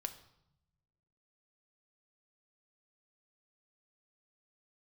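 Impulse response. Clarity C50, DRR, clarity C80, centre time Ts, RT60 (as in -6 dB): 12.5 dB, 7.0 dB, 15.0 dB, 8 ms, 0.80 s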